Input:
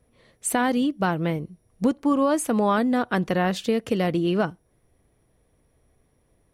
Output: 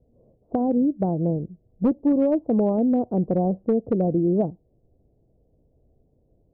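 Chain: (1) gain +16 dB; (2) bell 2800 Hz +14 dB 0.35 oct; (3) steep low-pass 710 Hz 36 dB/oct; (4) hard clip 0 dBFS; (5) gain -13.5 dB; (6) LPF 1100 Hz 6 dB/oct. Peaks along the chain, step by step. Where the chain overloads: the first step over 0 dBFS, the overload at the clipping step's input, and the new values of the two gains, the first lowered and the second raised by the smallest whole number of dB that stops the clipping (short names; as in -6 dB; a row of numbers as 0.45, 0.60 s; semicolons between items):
+7.0, +7.5, +5.0, 0.0, -13.5, -13.5 dBFS; step 1, 5.0 dB; step 1 +11 dB, step 5 -8.5 dB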